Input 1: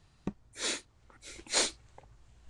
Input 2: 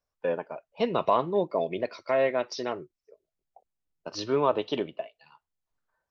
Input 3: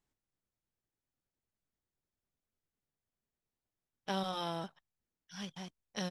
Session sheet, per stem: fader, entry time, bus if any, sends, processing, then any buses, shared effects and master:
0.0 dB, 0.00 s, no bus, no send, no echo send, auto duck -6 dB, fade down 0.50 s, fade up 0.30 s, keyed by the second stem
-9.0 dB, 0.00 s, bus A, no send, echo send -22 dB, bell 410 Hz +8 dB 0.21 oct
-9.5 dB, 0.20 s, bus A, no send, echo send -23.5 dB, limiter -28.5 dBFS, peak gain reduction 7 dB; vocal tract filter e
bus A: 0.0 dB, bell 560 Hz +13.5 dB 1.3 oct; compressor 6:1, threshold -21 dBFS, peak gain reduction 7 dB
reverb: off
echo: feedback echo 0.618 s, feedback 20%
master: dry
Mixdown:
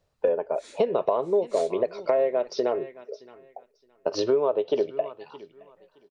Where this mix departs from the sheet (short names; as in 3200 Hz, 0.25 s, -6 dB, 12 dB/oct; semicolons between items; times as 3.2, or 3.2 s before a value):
stem 1 0.0 dB -> -10.5 dB; stem 2 -9.0 dB -> +3.0 dB